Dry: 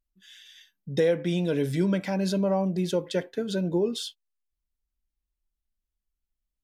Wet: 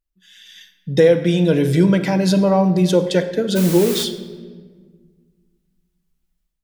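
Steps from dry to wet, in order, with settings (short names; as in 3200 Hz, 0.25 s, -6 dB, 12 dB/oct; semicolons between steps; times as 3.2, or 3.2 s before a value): 3.55–4.03 added noise white -39 dBFS; shoebox room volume 1700 m³, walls mixed, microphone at 0.66 m; AGC gain up to 11 dB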